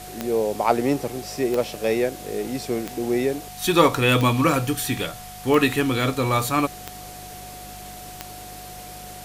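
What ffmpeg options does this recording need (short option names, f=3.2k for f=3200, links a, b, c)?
-af "adeclick=t=4,bandreject=f=50.2:t=h:w=4,bandreject=f=100.4:t=h:w=4,bandreject=f=150.6:t=h:w=4,bandreject=f=200.8:t=h:w=4,bandreject=f=730:w=30,afwtdn=0.0089"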